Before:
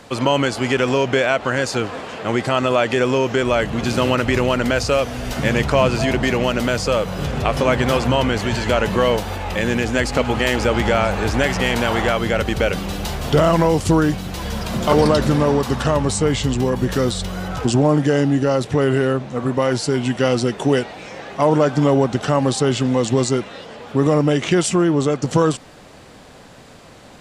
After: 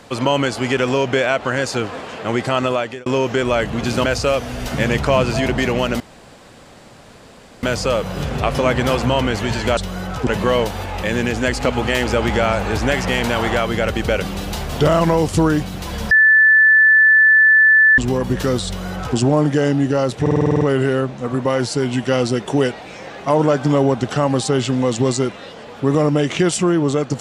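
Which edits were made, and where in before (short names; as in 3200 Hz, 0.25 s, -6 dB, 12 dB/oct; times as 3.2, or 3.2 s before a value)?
2.65–3.06 fade out
4.04–4.69 cut
6.65 insert room tone 1.63 s
14.63–16.5 bleep 1750 Hz -7.5 dBFS
17.18–17.68 copy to 8.79
18.73 stutter 0.05 s, 9 plays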